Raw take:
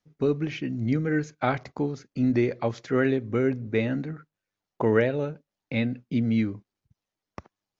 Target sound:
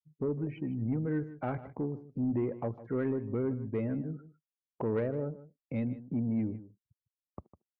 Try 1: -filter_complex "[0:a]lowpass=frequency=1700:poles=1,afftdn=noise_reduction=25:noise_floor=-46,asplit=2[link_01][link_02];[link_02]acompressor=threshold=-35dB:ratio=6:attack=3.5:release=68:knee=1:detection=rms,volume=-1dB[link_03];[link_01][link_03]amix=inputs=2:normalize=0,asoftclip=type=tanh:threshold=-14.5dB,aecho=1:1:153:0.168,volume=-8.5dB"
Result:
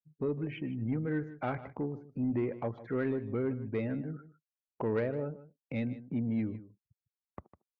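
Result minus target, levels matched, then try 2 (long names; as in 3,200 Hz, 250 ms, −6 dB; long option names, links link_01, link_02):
downward compressor: peak gain reduction +8 dB; 2,000 Hz band +5.5 dB
-filter_complex "[0:a]lowpass=frequency=650:poles=1,afftdn=noise_reduction=25:noise_floor=-46,asplit=2[link_01][link_02];[link_02]acompressor=threshold=-27dB:ratio=6:attack=3.5:release=68:knee=1:detection=rms,volume=-1dB[link_03];[link_01][link_03]amix=inputs=2:normalize=0,asoftclip=type=tanh:threshold=-14.5dB,aecho=1:1:153:0.168,volume=-8.5dB"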